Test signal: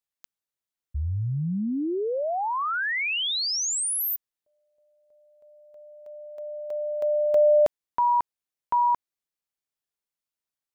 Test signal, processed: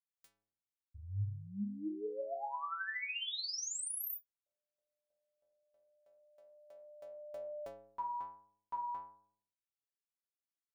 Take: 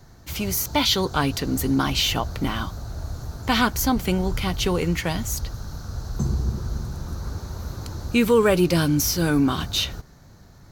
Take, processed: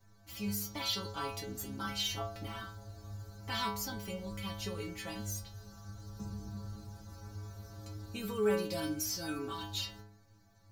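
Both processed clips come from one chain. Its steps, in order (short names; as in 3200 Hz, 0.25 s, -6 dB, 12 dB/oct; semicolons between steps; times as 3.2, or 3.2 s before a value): metallic resonator 100 Hz, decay 0.81 s, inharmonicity 0.008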